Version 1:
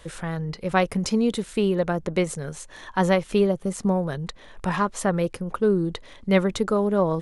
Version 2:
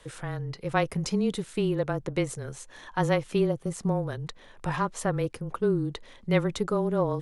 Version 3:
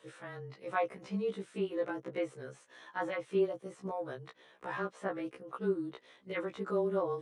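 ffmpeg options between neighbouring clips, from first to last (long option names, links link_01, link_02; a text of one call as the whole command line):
ffmpeg -i in.wav -af "afreqshift=-21,volume=-4.5dB" out.wav
ffmpeg -i in.wav -filter_complex "[0:a]acrossover=split=2600[link_01][link_02];[link_02]acompressor=threshold=-50dB:ratio=4:attack=1:release=60[link_03];[link_01][link_03]amix=inputs=2:normalize=0,highpass=260,equalizer=frequency=890:width_type=q:width=4:gain=-3,equalizer=frequency=4700:width_type=q:width=4:gain=-4,equalizer=frequency=7000:width_type=q:width=4:gain=-5,lowpass=frequency=9200:width=0.5412,lowpass=frequency=9200:width=1.3066,afftfilt=real='re*1.73*eq(mod(b,3),0)':imag='im*1.73*eq(mod(b,3),0)':win_size=2048:overlap=0.75,volume=-3.5dB" out.wav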